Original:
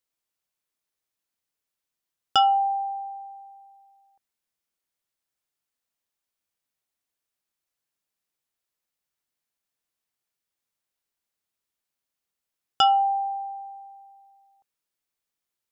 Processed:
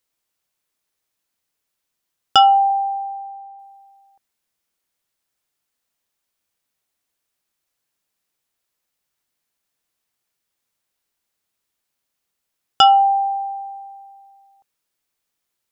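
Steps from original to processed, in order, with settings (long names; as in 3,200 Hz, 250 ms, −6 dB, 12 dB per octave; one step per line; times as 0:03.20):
0:02.70–0:03.59: low-pass filter 2,500 Hz 12 dB per octave
level +7.5 dB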